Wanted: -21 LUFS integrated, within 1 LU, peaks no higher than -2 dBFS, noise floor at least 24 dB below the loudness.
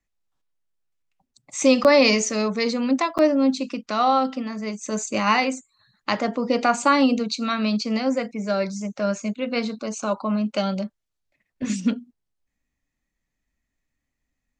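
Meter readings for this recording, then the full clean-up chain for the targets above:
dropouts 2; longest dropout 8.2 ms; loudness -22.5 LUFS; peak level -4.5 dBFS; loudness target -21.0 LUFS
-> interpolate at 1.84/3.18 s, 8.2 ms; trim +1.5 dB

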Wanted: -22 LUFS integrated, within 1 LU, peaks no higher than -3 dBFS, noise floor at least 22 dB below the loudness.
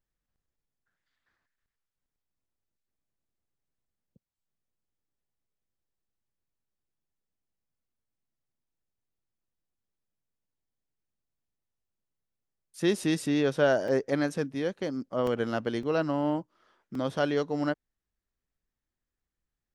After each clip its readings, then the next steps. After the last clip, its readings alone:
dropouts 4; longest dropout 2.7 ms; loudness -29.0 LUFS; peak level -12.5 dBFS; loudness target -22.0 LUFS
-> interpolate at 13.88/15.27/15.83/16.95 s, 2.7 ms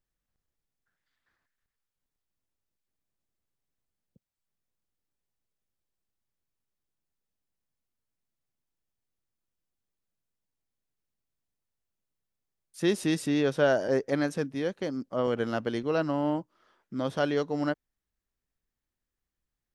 dropouts 0; loudness -29.0 LUFS; peak level -12.5 dBFS; loudness target -22.0 LUFS
-> trim +7 dB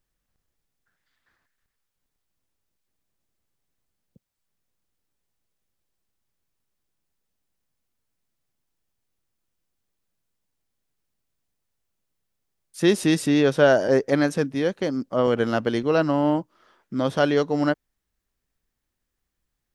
loudness -22.0 LUFS; peak level -5.5 dBFS; noise floor -81 dBFS

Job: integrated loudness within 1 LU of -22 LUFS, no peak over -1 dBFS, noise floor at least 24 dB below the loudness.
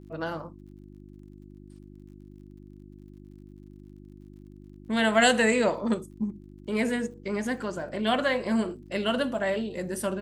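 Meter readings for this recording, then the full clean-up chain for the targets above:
tick rate 45 per s; hum 50 Hz; highest harmonic 350 Hz; hum level -46 dBFS; loudness -27.0 LUFS; peak level -9.0 dBFS; loudness target -22.0 LUFS
-> de-click; de-hum 50 Hz, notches 7; trim +5 dB

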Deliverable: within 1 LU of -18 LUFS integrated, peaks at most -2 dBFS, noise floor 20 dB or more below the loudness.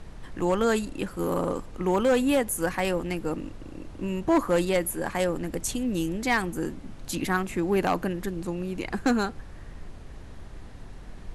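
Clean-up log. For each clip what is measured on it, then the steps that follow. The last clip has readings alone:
clipped samples 0.8%; clipping level -16.5 dBFS; noise floor -43 dBFS; noise floor target -48 dBFS; loudness -27.5 LUFS; peak level -16.5 dBFS; loudness target -18.0 LUFS
-> clip repair -16.5 dBFS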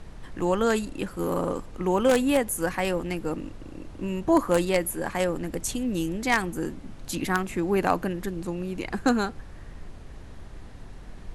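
clipped samples 0.0%; noise floor -43 dBFS; noise floor target -47 dBFS
-> noise print and reduce 6 dB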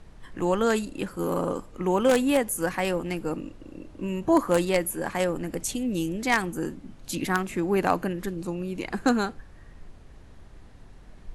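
noise floor -48 dBFS; loudness -27.0 LUFS; peak level -7.5 dBFS; loudness target -18.0 LUFS
-> trim +9 dB; peak limiter -2 dBFS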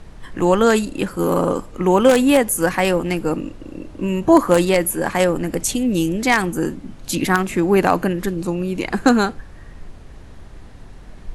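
loudness -18.0 LUFS; peak level -2.0 dBFS; noise floor -39 dBFS

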